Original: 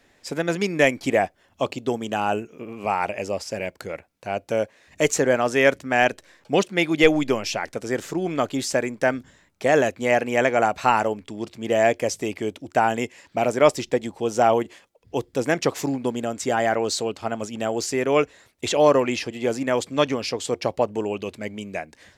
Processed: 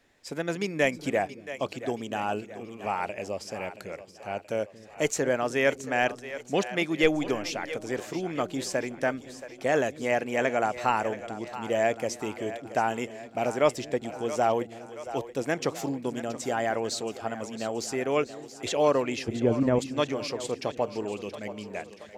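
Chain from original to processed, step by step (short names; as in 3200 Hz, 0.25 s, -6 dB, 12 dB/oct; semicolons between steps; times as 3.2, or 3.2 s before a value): 19.28–19.79 tilt -4.5 dB/oct; on a send: split-band echo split 370 Hz, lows 0.23 s, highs 0.676 s, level -13 dB; on the sum: gain -6.5 dB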